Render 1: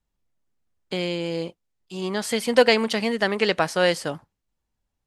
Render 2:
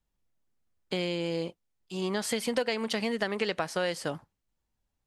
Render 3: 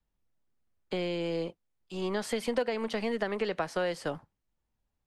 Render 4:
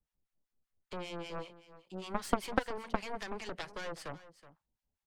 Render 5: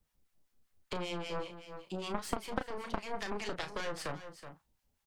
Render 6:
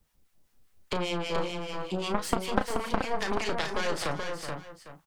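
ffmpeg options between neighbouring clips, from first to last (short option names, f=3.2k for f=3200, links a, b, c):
-af "acompressor=threshold=-24dB:ratio=6,volume=-2dB"
-filter_complex "[0:a]highshelf=f=4k:g=-8.5,acrossover=split=250|640|1500[a][b][c][d];[a]aeval=exprs='clip(val(0),-1,0.00376)':c=same[e];[d]alimiter=level_in=7dB:limit=-24dB:level=0:latency=1:release=20,volume=-7dB[f];[e][b][c][f]amix=inputs=4:normalize=0"
-filter_complex "[0:a]acrossover=split=850[a][b];[a]aeval=exprs='val(0)*(1-1/2+1/2*cos(2*PI*5.1*n/s))':c=same[c];[b]aeval=exprs='val(0)*(1-1/2-1/2*cos(2*PI*5.1*n/s))':c=same[d];[c][d]amix=inputs=2:normalize=0,aeval=exprs='0.1*(cos(1*acos(clip(val(0)/0.1,-1,1)))-cos(1*PI/2))+0.0447*(cos(3*acos(clip(val(0)/0.1,-1,1)))-cos(3*PI/2))+0.00501*(cos(6*acos(clip(val(0)/0.1,-1,1)))-cos(6*PI/2))+0.00631*(cos(8*acos(clip(val(0)/0.1,-1,1)))-cos(8*PI/2))':c=same,aecho=1:1:373:0.158,volume=7.5dB"
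-filter_complex "[0:a]acompressor=threshold=-45dB:ratio=3,asplit=2[a][b];[b]adelay=34,volume=-8.5dB[c];[a][c]amix=inputs=2:normalize=0,volume=9dB"
-af "aecho=1:1:430:0.531,volume=7.5dB"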